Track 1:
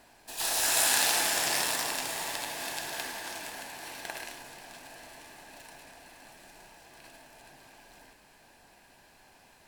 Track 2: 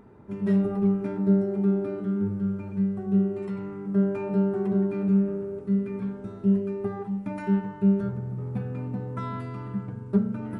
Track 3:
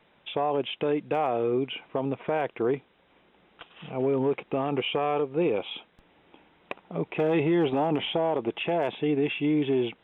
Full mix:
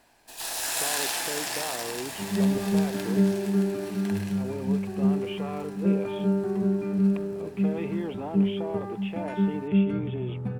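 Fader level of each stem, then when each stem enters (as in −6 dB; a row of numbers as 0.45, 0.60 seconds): −3.0, −1.0, −10.0 decibels; 0.00, 1.90, 0.45 seconds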